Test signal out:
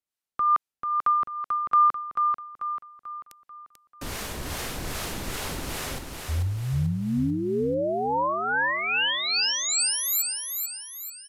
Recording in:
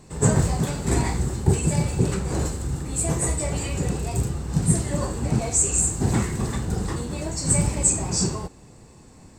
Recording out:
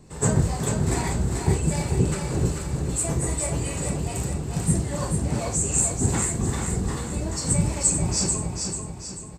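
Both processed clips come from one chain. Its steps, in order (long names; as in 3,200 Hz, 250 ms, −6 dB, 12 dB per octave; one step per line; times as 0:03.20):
two-band tremolo in antiphase 2.5 Hz, depth 50%, crossover 490 Hz
repeating echo 440 ms, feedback 45%, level −5 dB
downsampling to 32,000 Hz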